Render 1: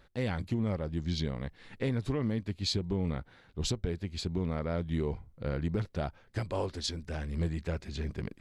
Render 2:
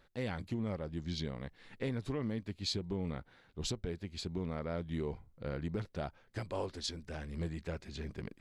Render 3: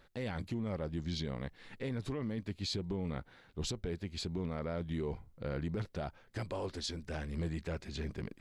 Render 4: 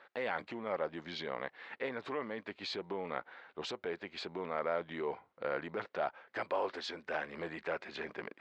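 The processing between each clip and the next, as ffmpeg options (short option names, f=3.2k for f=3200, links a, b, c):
-af "equalizer=f=62:w=0.51:g=-4.5,volume=-4dB"
-af "alimiter=level_in=8dB:limit=-24dB:level=0:latency=1:release=11,volume=-8dB,volume=3dB"
-af "highpass=650,lowpass=2.1k,volume=10dB"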